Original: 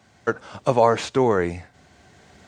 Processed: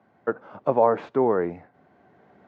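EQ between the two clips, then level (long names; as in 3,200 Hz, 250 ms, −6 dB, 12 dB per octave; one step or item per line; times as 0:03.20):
high-pass filter 190 Hz 12 dB per octave
low-pass filter 1,200 Hz 12 dB per octave
−1.5 dB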